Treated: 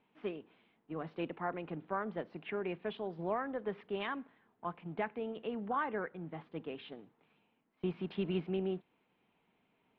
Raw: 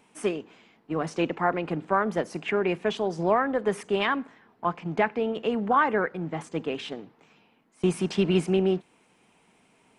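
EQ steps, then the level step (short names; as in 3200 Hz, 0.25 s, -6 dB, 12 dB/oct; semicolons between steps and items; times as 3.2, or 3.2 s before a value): ladder low-pass 4400 Hz, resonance 50%; air absorption 420 m; -2.0 dB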